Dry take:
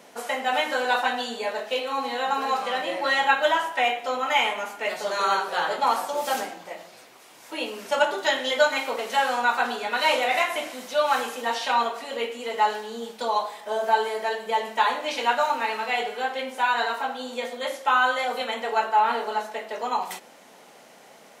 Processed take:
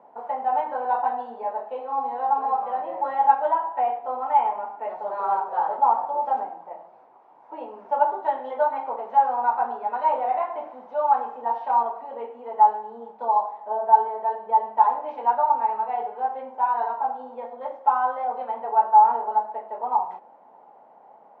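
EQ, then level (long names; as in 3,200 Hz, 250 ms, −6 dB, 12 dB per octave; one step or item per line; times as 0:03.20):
high-pass filter 170 Hz 6 dB per octave
low-pass with resonance 870 Hz, resonance Q 5.1
−7.5 dB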